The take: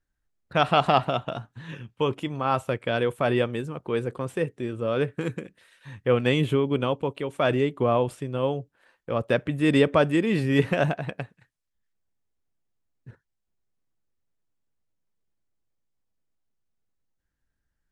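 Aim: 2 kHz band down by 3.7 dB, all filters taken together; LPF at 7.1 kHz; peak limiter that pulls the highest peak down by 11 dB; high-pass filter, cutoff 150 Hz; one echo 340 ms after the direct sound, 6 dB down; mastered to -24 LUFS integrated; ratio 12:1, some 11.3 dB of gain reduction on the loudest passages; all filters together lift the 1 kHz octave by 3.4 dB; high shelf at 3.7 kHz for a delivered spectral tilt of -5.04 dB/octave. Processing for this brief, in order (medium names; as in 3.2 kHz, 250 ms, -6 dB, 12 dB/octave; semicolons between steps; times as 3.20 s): high-pass 150 Hz; low-pass 7.1 kHz; peaking EQ 1 kHz +7 dB; peaking EQ 2 kHz -5.5 dB; treble shelf 3.7 kHz -8 dB; compression 12:1, threshold -24 dBFS; peak limiter -23 dBFS; delay 340 ms -6 dB; trim +10 dB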